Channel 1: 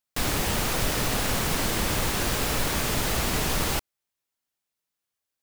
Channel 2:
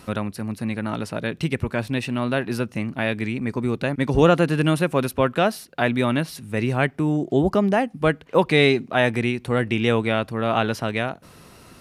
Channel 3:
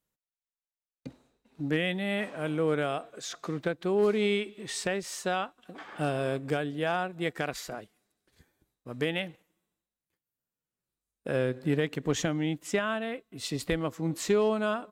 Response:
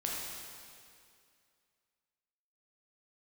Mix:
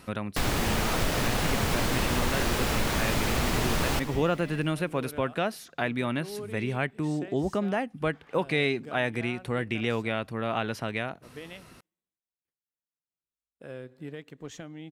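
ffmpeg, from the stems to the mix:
-filter_complex "[0:a]highshelf=f=5200:g=-7.5,adelay=200,volume=1.33,asplit=2[s0][s1];[s1]volume=0.237[s2];[1:a]equalizer=f=2100:w=1.5:g=3,volume=0.531[s3];[2:a]adelay=2350,volume=0.224[s4];[3:a]atrim=start_sample=2205[s5];[s2][s5]afir=irnorm=-1:irlink=0[s6];[s0][s3][s4][s6]amix=inputs=4:normalize=0,acompressor=threshold=0.0316:ratio=1.5"

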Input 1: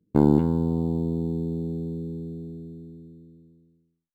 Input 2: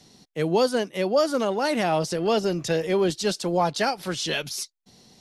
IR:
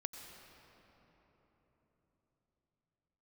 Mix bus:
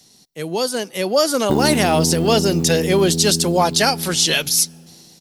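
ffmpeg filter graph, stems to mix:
-filter_complex "[0:a]acompressor=threshold=0.0447:ratio=2,adelay=1350,volume=0.596,asplit=2[s0][s1];[s1]volume=0.501[s2];[1:a]volume=0.631,asplit=2[s3][s4];[s4]volume=0.0794[s5];[2:a]atrim=start_sample=2205[s6];[s2][s5]amix=inputs=2:normalize=0[s7];[s7][s6]afir=irnorm=-1:irlink=0[s8];[s0][s3][s8]amix=inputs=3:normalize=0,aemphasis=mode=production:type=75kf,dynaudnorm=f=370:g=5:m=3.98"

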